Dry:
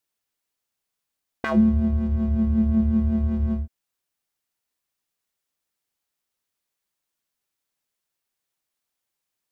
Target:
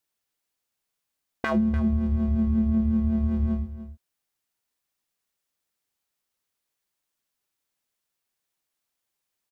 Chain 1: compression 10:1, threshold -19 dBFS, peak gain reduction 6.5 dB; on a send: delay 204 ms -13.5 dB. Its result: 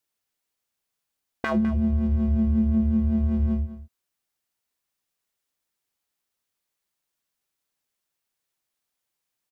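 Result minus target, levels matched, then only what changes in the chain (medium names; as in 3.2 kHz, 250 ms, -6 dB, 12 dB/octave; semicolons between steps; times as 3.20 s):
echo 91 ms early
change: delay 295 ms -13.5 dB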